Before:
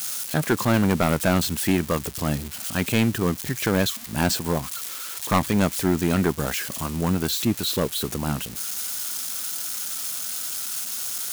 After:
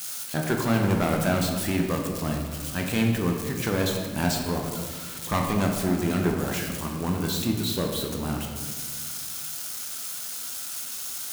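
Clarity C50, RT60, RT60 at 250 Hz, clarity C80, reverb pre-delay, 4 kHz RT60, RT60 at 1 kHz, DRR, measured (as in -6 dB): 3.5 dB, 1.8 s, 2.2 s, 5.5 dB, 12 ms, 0.90 s, 1.6 s, 1.0 dB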